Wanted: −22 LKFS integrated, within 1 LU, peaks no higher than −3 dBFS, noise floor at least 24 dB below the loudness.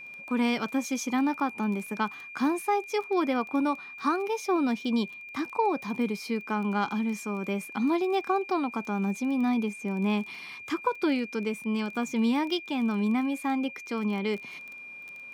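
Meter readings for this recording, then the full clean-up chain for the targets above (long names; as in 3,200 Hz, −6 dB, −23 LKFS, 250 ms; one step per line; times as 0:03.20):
crackle rate 19 per second; interfering tone 2,400 Hz; level of the tone −41 dBFS; integrated loudness −29.0 LKFS; sample peak −13.0 dBFS; target loudness −22.0 LKFS
→ click removal
notch filter 2,400 Hz, Q 30
level +7 dB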